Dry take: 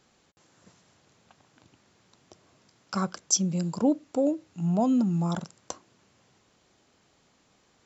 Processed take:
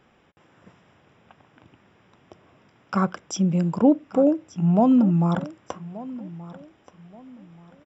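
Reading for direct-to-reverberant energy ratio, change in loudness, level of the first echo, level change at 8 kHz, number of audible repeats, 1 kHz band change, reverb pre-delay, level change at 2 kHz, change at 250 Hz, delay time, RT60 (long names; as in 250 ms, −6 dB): no reverb audible, +5.5 dB, −18.0 dB, can't be measured, 2, +6.5 dB, no reverb audible, +6.5 dB, +6.5 dB, 1,179 ms, no reverb audible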